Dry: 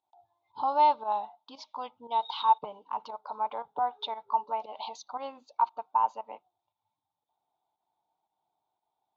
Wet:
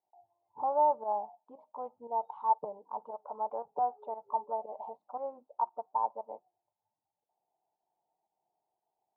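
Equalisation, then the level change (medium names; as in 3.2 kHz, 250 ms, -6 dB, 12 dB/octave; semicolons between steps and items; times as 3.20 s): high-pass 190 Hz 6 dB/octave; four-pole ladder low-pass 820 Hz, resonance 25%; peaking EQ 280 Hz -8.5 dB 0.24 oct; +7.0 dB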